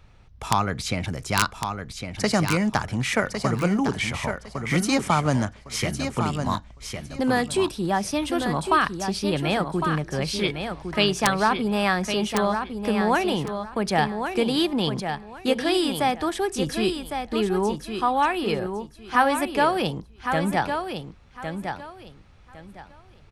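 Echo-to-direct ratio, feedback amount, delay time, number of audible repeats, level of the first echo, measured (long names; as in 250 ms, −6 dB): −7.0 dB, 22%, 1,107 ms, 3, −7.0 dB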